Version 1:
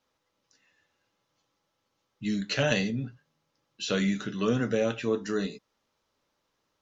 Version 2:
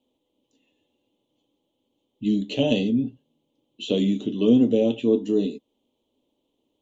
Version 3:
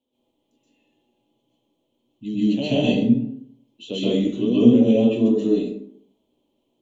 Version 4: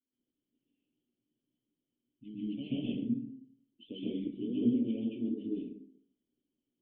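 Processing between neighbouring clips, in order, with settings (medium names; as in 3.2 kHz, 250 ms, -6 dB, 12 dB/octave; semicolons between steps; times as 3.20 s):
FFT filter 180 Hz 0 dB, 250 Hz +14 dB, 950 Hz -3 dB, 1.5 kHz -28 dB, 3.2 kHz +7 dB, 5.1 kHz -17 dB, 7.2 kHz -3 dB
plate-style reverb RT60 0.64 s, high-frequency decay 0.55×, pre-delay 115 ms, DRR -10 dB; trim -7 dB
cascade formant filter i; harmonic-percussive split harmonic -13 dB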